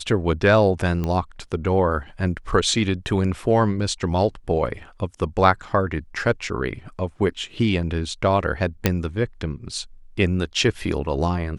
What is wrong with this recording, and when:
0:01.04: click −14 dBFS
0:08.86: click −2 dBFS

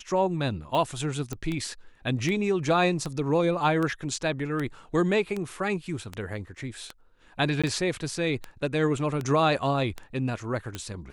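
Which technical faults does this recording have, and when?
scratch tick 78 rpm −18 dBFS
0:01.33: click −19 dBFS
0:07.62–0:07.64: drop-out 16 ms

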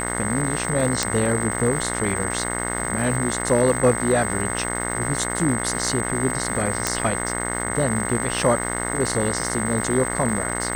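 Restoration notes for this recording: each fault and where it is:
mains buzz 60 Hz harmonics 36 −28 dBFS
surface crackle 530 per second −30 dBFS
whistle 8,200 Hz −28 dBFS
0:01.03: click
0:06.87: click

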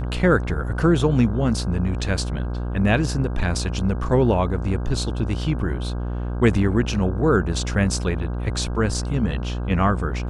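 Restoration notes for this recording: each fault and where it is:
mains buzz 60 Hz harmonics 27 −26 dBFS

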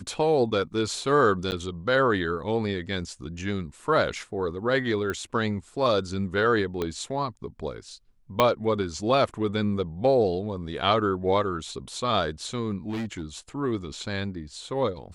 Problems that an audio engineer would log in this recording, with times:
0:01.51–0:01.52: drop-out 9.8 ms
0:05.10: click −17 dBFS
0:06.82: click −15 dBFS
0:08.40: click −7 dBFS
0:12.89–0:13.24: clipping −27.5 dBFS

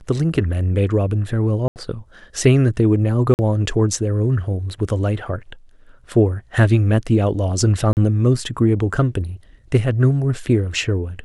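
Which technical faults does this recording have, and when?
0:01.68–0:01.76: drop-out 79 ms
0:03.34–0:03.39: drop-out 49 ms
0:07.93–0:07.97: drop-out 39 ms

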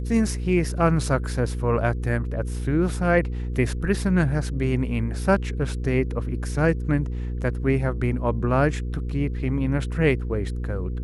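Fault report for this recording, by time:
mains hum 60 Hz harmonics 8 −28 dBFS

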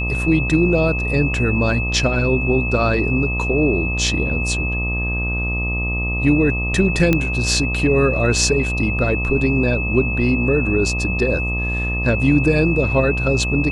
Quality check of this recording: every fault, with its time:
mains buzz 60 Hz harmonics 21 −23 dBFS
whistle 2,600 Hz −23 dBFS
0:07.13: click −4 dBFS

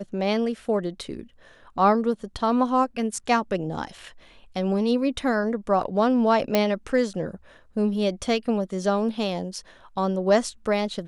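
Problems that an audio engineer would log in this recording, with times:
0:06.55: click −6 dBFS

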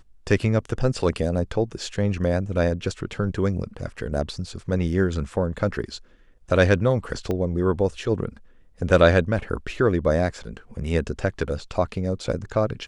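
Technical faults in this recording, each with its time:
0:07.31: click −15 dBFS

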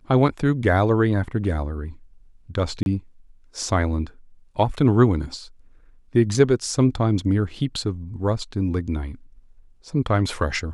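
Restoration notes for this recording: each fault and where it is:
0:02.83–0:02.86: drop-out 31 ms

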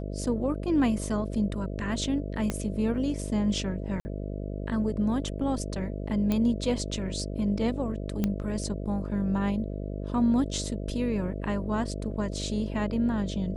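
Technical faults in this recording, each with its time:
mains buzz 50 Hz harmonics 13 −34 dBFS
0:02.50: click −15 dBFS
0:04.00–0:04.05: drop-out 50 ms
0:06.32: click −15 dBFS
0:08.24: click −14 dBFS

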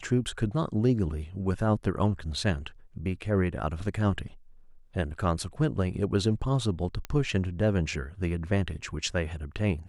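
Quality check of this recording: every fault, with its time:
0:07.05: click −19 dBFS

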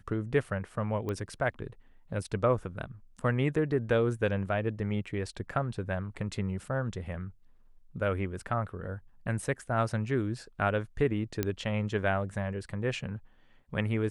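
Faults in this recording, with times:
0:01.09: click −22 dBFS
0:11.43: click −14 dBFS

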